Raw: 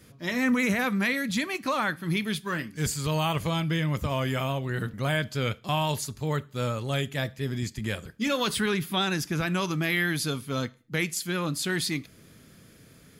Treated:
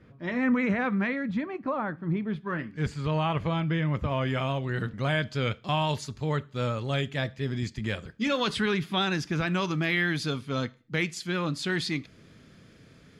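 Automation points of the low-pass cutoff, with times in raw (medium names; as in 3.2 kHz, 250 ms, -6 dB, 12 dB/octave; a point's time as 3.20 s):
0.98 s 1.9 kHz
1.58 s 1 kHz
2.26 s 1 kHz
2.75 s 2.4 kHz
4.05 s 2.4 kHz
4.53 s 4.9 kHz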